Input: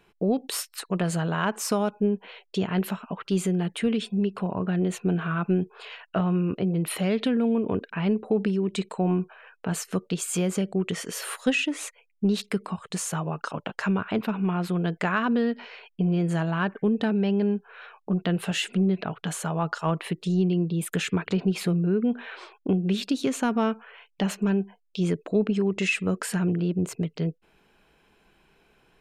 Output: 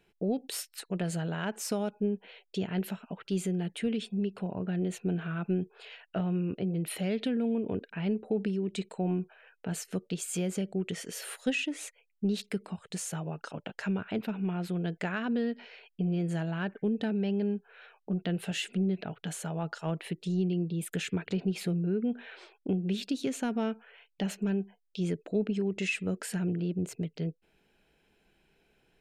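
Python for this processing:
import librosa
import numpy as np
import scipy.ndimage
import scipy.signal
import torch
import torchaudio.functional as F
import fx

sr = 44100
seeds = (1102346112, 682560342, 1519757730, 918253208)

y = fx.peak_eq(x, sr, hz=1100.0, db=-10.5, octaves=0.51)
y = y * 10.0 ** (-6.0 / 20.0)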